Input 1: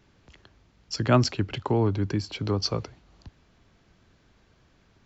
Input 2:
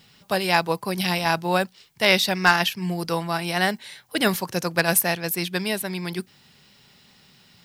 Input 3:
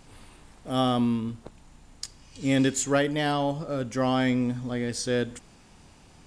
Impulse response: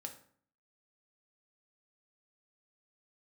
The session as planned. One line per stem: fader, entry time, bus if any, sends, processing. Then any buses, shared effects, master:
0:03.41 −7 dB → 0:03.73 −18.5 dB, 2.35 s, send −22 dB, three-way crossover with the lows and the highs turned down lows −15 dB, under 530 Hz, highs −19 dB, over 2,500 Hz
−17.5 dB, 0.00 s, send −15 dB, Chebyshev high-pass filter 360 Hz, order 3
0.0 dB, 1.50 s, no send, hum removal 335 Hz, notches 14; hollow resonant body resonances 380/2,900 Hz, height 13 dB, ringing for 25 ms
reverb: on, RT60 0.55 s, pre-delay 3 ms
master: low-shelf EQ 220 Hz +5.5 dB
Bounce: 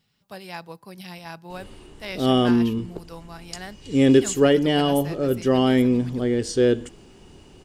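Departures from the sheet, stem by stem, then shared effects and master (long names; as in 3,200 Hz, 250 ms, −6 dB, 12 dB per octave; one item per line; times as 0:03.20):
stem 1: muted
stem 2: missing Chebyshev high-pass filter 360 Hz, order 3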